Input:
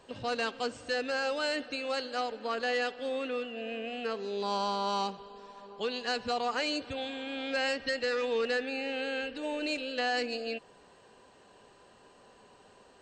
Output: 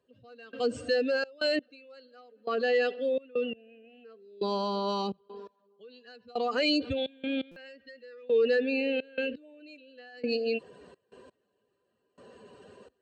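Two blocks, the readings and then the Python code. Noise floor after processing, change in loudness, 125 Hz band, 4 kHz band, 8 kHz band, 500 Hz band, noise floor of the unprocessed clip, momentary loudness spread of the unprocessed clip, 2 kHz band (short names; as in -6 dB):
-77 dBFS, +3.0 dB, +4.5 dB, -1.0 dB, n/a, +3.5 dB, -59 dBFS, 7 LU, -2.0 dB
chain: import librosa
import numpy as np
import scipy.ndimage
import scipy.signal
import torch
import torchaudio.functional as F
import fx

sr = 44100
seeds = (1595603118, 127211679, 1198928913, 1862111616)

y = fx.spec_expand(x, sr, power=1.6)
y = fx.peak_eq(y, sr, hz=860.0, db=-14.0, octaves=0.58)
y = fx.step_gate(y, sr, bpm=85, pattern='...xxxx.x..', floor_db=-24.0, edge_ms=4.5)
y = scipy.signal.sosfilt(scipy.signal.butter(4, 59.0, 'highpass', fs=sr, output='sos'), y)
y = fx.dynamic_eq(y, sr, hz=1600.0, q=1.4, threshold_db=-51.0, ratio=4.0, max_db=-6)
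y = fx.buffer_glitch(y, sr, at_s=(7.51,), block=256, repeats=8)
y = y * 10.0 ** (8.5 / 20.0)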